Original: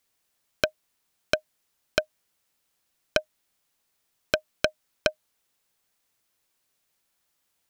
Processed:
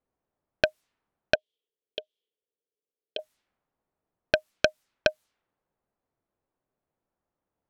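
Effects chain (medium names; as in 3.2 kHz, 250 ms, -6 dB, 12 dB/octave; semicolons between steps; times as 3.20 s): level-controlled noise filter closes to 770 Hz, open at -30 dBFS; 1.35–3.19 s: two resonant band-passes 1.2 kHz, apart 2.9 oct; trim +2 dB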